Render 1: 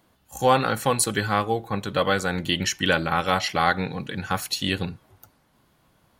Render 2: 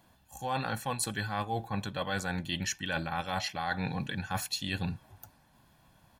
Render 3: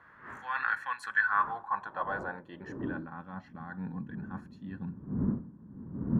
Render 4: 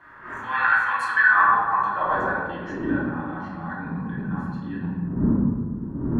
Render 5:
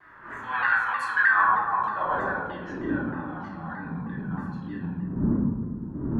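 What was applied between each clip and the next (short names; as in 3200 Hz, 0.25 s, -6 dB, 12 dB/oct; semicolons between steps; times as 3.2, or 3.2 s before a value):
comb 1.2 ms, depth 47%; reverse; compressor 10:1, threshold -28 dBFS, peak gain reduction 15.5 dB; reverse; gain -1.5 dB
wind noise 170 Hz -30 dBFS; band shelf 1300 Hz +13.5 dB 1.2 oct; band-pass sweep 1900 Hz -> 220 Hz, 0.98–3.29
reverb RT60 1.5 s, pre-delay 3 ms, DRR -7.5 dB; gain +3.5 dB
shaped vibrato saw down 3.2 Hz, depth 100 cents; gain -3.5 dB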